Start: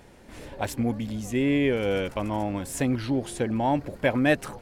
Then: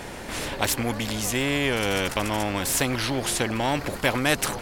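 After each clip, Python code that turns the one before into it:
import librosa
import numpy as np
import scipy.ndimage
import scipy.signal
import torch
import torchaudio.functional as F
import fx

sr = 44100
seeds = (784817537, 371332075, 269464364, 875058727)

y = fx.spectral_comp(x, sr, ratio=2.0)
y = y * librosa.db_to_amplitude(4.5)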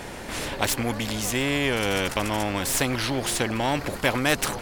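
y = fx.tracing_dist(x, sr, depth_ms=0.023)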